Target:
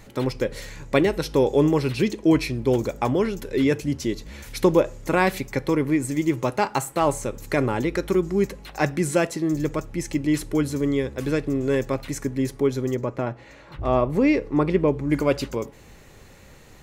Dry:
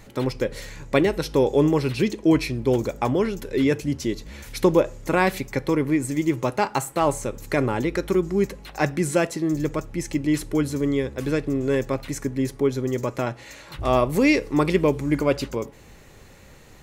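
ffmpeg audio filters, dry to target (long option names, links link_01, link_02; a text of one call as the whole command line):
ffmpeg -i in.wav -filter_complex "[0:a]asplit=3[link_01][link_02][link_03];[link_01]afade=type=out:start_time=12.94:duration=0.02[link_04];[link_02]lowpass=frequency=1300:poles=1,afade=type=in:start_time=12.94:duration=0.02,afade=type=out:start_time=15.09:duration=0.02[link_05];[link_03]afade=type=in:start_time=15.09:duration=0.02[link_06];[link_04][link_05][link_06]amix=inputs=3:normalize=0" out.wav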